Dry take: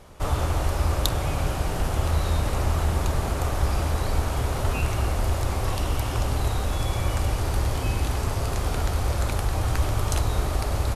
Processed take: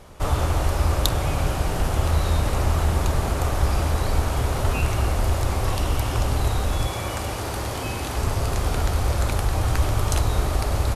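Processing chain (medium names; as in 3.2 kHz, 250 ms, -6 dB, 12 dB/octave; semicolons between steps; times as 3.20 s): 6.87–8.16 s: high-pass 190 Hz 6 dB/octave; trim +2.5 dB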